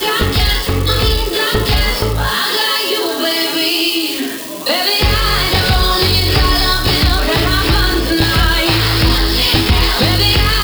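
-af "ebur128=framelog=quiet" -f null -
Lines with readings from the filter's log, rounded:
Integrated loudness:
  I:         -13.0 LUFS
  Threshold: -23.0 LUFS
Loudness range:
  LRA:         2.0 LU
  Threshold: -33.1 LUFS
  LRA low:   -14.2 LUFS
  LRA high:  -12.2 LUFS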